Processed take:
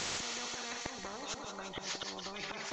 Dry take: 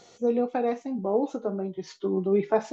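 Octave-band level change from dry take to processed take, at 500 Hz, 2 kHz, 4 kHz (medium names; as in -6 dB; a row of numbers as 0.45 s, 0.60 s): -21.5 dB, +2.5 dB, +13.0 dB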